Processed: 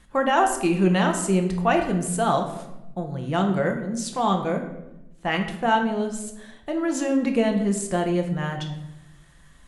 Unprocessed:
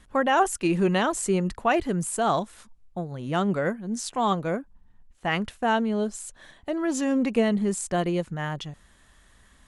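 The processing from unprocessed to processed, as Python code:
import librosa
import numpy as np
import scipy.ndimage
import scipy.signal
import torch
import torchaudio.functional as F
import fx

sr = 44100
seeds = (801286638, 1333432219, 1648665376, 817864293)

y = fx.room_shoebox(x, sr, seeds[0], volume_m3=330.0, walls='mixed', distance_m=0.78)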